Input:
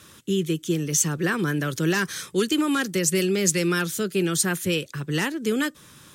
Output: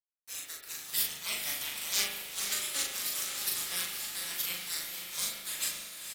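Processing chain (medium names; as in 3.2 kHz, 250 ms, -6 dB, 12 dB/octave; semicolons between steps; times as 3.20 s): high-pass 940 Hz 12 dB/octave; spectral gate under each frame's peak -20 dB weak; gate with hold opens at -57 dBFS; tilt shelf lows -5 dB, about 1.2 kHz; companded quantiser 4-bit; doubling 39 ms -3 dB; on a send: echo that smears into a reverb 509 ms, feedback 46%, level -6.5 dB; on the sum: spring tank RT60 1 s, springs 39 ms, chirp 30 ms, DRR 3.5 dB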